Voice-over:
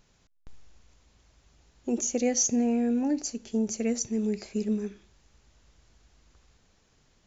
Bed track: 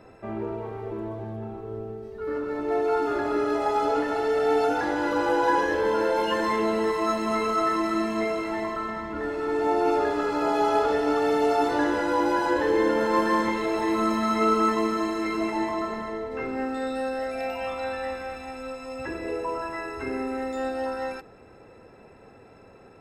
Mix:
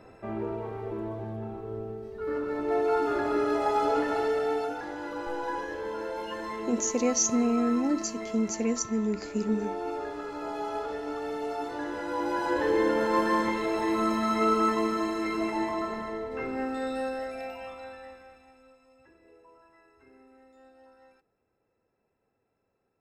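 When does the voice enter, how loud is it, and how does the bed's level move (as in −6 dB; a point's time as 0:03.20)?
4.80 s, 0.0 dB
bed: 0:04.22 −1.5 dB
0:04.81 −11 dB
0:11.81 −11 dB
0:12.66 −2.5 dB
0:17.03 −2.5 dB
0:19.13 −27 dB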